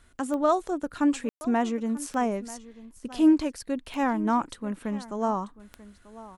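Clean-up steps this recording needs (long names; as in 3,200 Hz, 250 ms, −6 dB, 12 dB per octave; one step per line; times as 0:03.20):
click removal
ambience match 0:01.29–0:01.41
echo removal 939 ms −18 dB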